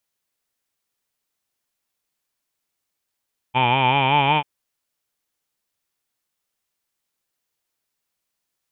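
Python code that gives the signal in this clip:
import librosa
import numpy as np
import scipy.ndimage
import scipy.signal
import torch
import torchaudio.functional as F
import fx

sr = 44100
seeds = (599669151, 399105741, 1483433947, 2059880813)

y = fx.formant_vowel(sr, seeds[0], length_s=0.89, hz=122.0, glide_st=3.5, vibrato_hz=5.3, vibrato_st=0.9, f1_hz=880.0, f2_hz=2400.0, f3_hz=3100.0)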